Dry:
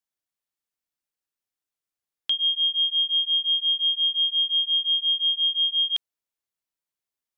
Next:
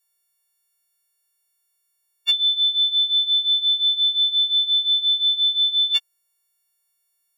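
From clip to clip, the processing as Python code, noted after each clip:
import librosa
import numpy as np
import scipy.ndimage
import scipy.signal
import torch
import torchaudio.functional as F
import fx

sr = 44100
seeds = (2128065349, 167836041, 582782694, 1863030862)

y = fx.freq_snap(x, sr, grid_st=4)
y = y * 10.0 ** (4.5 / 20.0)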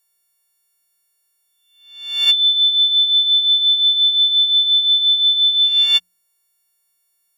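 y = fx.spec_swells(x, sr, rise_s=0.72)
y = fx.hum_notches(y, sr, base_hz=60, count=3)
y = y * 10.0 ** (4.5 / 20.0)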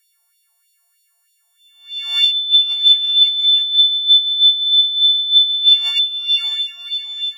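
y = fx.echo_diffused(x, sr, ms=528, feedback_pct=48, wet_db=-10.5)
y = fx.over_compress(y, sr, threshold_db=-20.0, ratio=-1.0)
y = fx.filter_lfo_highpass(y, sr, shape='sine', hz=3.2, low_hz=720.0, high_hz=3700.0, q=3.4)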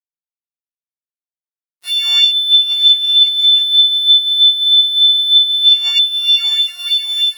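y = fx.lowpass_res(x, sr, hz=6100.0, q=2.7)
y = np.sign(y) * np.maximum(np.abs(y) - 10.0 ** (-39.0 / 20.0), 0.0)
y = fx.band_squash(y, sr, depth_pct=70)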